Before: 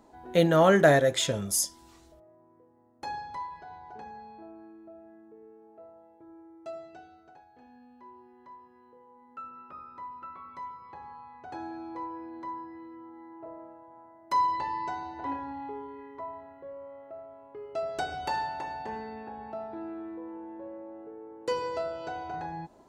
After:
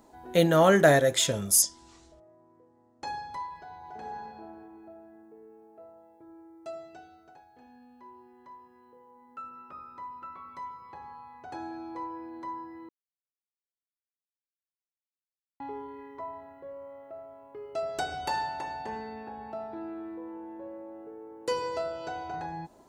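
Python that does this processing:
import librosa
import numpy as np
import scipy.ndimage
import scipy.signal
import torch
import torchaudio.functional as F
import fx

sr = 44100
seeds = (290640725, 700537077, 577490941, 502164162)

y = fx.lowpass(x, sr, hz=7700.0, slope=24, at=(1.62, 3.07))
y = fx.reverb_throw(y, sr, start_s=3.75, length_s=0.5, rt60_s=2.7, drr_db=-1.0)
y = fx.edit(y, sr, fx.silence(start_s=12.89, length_s=2.71), tone=tone)
y = fx.high_shelf(y, sr, hz=6600.0, db=9.0)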